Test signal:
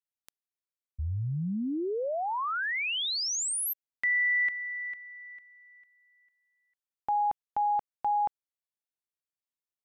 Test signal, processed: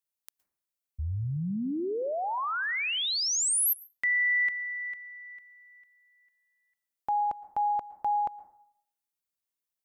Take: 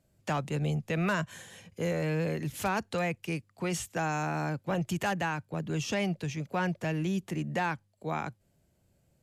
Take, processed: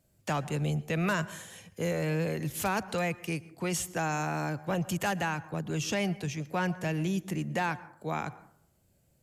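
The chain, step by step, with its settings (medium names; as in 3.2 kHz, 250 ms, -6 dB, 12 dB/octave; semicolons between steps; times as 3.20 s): treble shelf 7.6 kHz +8 dB; plate-style reverb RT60 0.66 s, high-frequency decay 0.3×, pre-delay 105 ms, DRR 18 dB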